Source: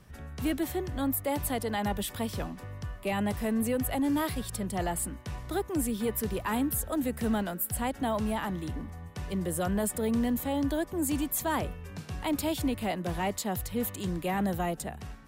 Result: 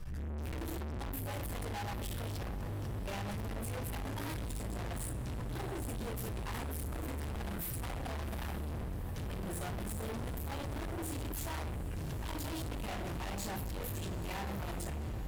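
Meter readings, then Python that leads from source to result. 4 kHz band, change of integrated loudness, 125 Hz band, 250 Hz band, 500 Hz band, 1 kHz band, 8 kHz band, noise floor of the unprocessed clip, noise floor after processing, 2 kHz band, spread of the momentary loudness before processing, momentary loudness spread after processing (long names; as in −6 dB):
−6.5 dB, −8.5 dB, −1.5 dB, −13.0 dB, −11.0 dB, −9.5 dB, −10.0 dB, −46 dBFS, −39 dBFS, −7.0 dB, 8 LU, 1 LU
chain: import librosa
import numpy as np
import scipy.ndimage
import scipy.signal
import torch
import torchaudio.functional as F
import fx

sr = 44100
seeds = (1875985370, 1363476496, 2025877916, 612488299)

y = fx.low_shelf_res(x, sr, hz=140.0, db=11.5, q=1.5)
y = fx.room_shoebox(y, sr, seeds[0], volume_m3=57.0, walls='mixed', distance_m=1.5)
y = fx.tube_stage(y, sr, drive_db=35.0, bias=0.5)
y = fx.echo_diffused(y, sr, ms=797, feedback_pct=68, wet_db=-14)
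y = fx.env_flatten(y, sr, amount_pct=50)
y = F.gain(torch.from_numpy(y), -4.0).numpy()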